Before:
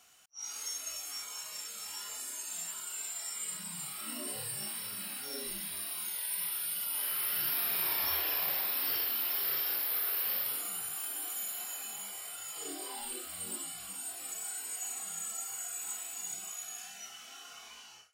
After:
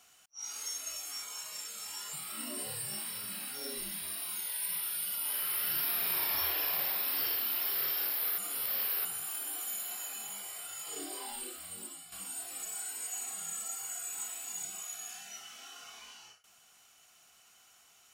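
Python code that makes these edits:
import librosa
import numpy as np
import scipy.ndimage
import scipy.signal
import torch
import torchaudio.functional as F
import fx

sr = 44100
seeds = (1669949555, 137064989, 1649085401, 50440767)

y = fx.edit(x, sr, fx.cut(start_s=2.13, length_s=1.69),
    fx.reverse_span(start_s=10.07, length_s=0.67),
    fx.fade_out_to(start_s=12.93, length_s=0.88, floor_db=-9.5), tone=tone)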